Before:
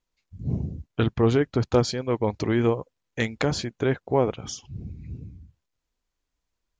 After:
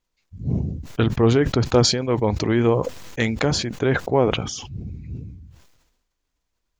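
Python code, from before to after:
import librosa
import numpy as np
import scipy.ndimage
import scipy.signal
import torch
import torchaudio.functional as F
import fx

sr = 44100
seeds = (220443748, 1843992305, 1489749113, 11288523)

y = fx.sustainer(x, sr, db_per_s=53.0)
y = y * librosa.db_to_amplitude(3.0)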